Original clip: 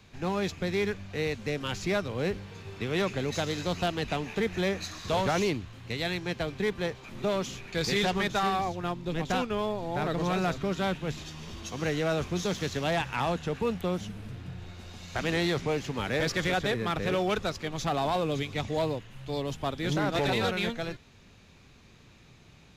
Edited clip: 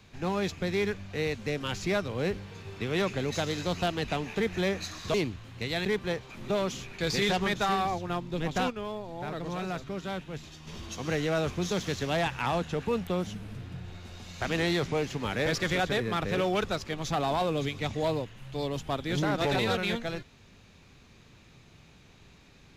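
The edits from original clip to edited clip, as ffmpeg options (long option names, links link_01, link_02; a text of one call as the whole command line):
ffmpeg -i in.wav -filter_complex "[0:a]asplit=5[link_01][link_02][link_03][link_04][link_05];[link_01]atrim=end=5.142[link_06];[link_02]atrim=start=5.428:end=6.142[link_07];[link_03]atrim=start=6.588:end=9.442[link_08];[link_04]atrim=start=9.438:end=11.412,asetpts=PTS-STARTPTS,volume=-6dB[link_09];[link_05]atrim=start=11.408[link_10];[link_06][link_07]acrossfade=duration=0.004:curve1=hsin:curve2=hsin[link_11];[link_11][link_08]acrossfade=duration=0.004:curve1=hsin:curve2=hsin[link_12];[link_12][link_09]acrossfade=duration=0.004:curve1=hsin:curve2=hsin[link_13];[link_13][link_10]acrossfade=duration=0.004:curve1=hsin:curve2=hsin" out.wav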